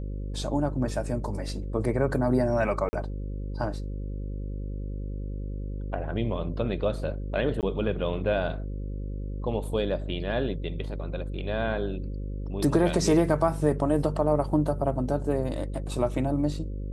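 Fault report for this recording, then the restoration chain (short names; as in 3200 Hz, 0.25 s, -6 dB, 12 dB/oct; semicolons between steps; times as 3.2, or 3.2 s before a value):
buzz 50 Hz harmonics 11 -33 dBFS
2.89–2.93 gap 40 ms
7.61–7.63 gap 18 ms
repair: de-hum 50 Hz, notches 11; interpolate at 2.89, 40 ms; interpolate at 7.61, 18 ms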